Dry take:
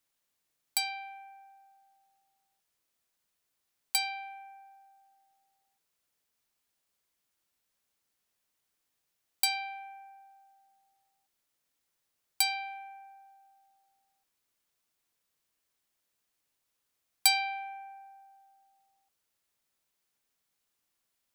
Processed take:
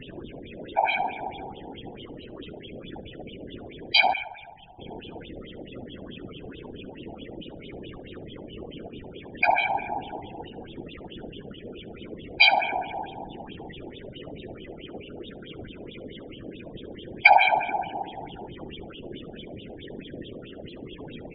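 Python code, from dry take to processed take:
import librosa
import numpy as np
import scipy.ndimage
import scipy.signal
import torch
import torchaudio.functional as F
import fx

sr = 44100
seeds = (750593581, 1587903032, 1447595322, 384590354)

p1 = fx.quant_dither(x, sr, seeds[0], bits=6, dither='triangular')
p2 = x + (p1 * librosa.db_to_amplitude(-9.0))
p3 = fx.filter_lfo_lowpass(p2, sr, shape='sine', hz=4.6, low_hz=680.0, high_hz=3400.0, q=4.7)
p4 = fx.low_shelf_res(p3, sr, hz=570.0, db=13.5, q=1.5)
p5 = fx.spec_topn(p4, sr, count=16)
p6 = fx.tone_stack(p5, sr, knobs='10-0-10', at=(4.13, 4.79))
p7 = fx.echo_feedback(p6, sr, ms=70, feedback_pct=30, wet_db=-20)
p8 = fx.whisperise(p7, sr, seeds[1])
y = p8 * librosa.db_to_amplitude(6.0)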